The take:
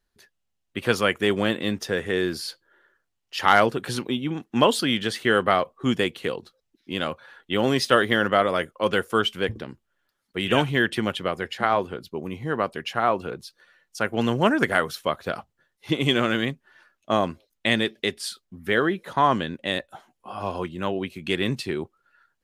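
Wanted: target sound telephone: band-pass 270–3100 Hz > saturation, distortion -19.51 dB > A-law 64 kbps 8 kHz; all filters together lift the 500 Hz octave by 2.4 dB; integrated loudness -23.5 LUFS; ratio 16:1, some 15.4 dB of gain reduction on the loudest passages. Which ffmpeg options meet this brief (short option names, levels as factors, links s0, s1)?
-af "equalizer=f=500:t=o:g=3.5,acompressor=threshold=0.0501:ratio=16,highpass=270,lowpass=3100,asoftclip=threshold=0.1,volume=3.76" -ar 8000 -c:a pcm_alaw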